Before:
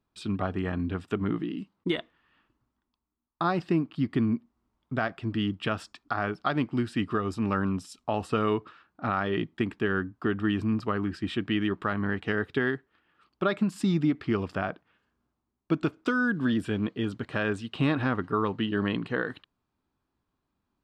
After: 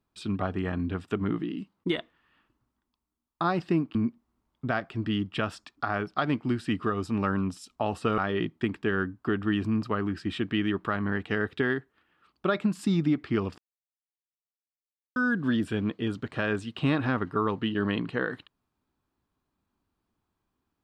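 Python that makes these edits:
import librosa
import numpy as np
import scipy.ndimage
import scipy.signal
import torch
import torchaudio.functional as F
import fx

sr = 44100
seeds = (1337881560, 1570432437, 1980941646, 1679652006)

y = fx.edit(x, sr, fx.cut(start_s=3.95, length_s=0.28),
    fx.cut(start_s=8.46, length_s=0.69),
    fx.silence(start_s=14.55, length_s=1.58), tone=tone)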